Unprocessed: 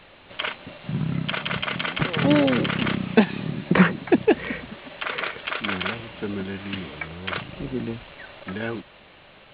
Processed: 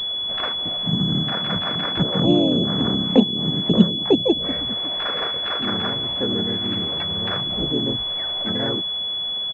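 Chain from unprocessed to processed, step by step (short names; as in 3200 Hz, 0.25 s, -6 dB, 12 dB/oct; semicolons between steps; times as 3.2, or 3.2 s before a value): harmoniser -3 st -12 dB, +3 st 0 dB; in parallel at +1 dB: compressor 5:1, threshold -31 dBFS, peak gain reduction 22 dB; on the sum: treble ducked by the level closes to 490 Hz, closed at -12.5 dBFS; pulse-width modulation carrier 3400 Hz; gain -1.5 dB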